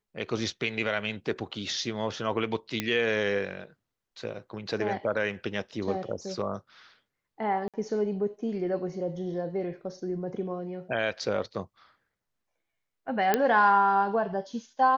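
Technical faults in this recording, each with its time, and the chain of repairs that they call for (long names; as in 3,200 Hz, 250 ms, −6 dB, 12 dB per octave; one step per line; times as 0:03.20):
0:02.80: click −12 dBFS
0:07.68–0:07.74: drop-out 57 ms
0:13.34: click −9 dBFS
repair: click removal
repair the gap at 0:07.68, 57 ms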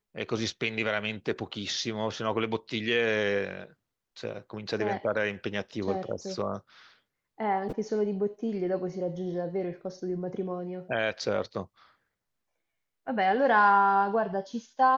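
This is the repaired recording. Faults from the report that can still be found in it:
none of them is left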